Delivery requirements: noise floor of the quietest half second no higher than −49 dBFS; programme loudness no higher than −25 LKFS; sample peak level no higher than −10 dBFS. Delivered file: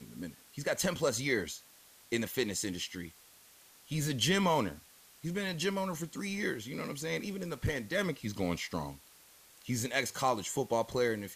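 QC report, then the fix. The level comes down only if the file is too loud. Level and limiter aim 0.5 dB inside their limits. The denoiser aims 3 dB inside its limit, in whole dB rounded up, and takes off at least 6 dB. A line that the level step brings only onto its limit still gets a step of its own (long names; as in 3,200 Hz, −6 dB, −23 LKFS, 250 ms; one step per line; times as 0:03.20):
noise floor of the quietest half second −59 dBFS: in spec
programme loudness −34.0 LKFS: in spec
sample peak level −16.0 dBFS: in spec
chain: no processing needed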